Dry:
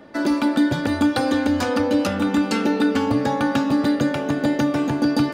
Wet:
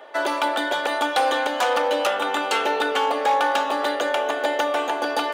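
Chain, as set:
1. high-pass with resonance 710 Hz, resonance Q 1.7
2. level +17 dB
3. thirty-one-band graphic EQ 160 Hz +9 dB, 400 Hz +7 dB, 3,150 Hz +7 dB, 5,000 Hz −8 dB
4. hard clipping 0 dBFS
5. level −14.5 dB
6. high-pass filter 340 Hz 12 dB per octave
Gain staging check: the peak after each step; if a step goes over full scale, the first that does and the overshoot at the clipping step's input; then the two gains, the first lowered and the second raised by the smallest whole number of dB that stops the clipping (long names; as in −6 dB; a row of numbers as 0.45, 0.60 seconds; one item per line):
−8.5, +8.5, +9.0, 0.0, −14.5, −9.5 dBFS
step 2, 9.0 dB
step 2 +8 dB, step 5 −5.5 dB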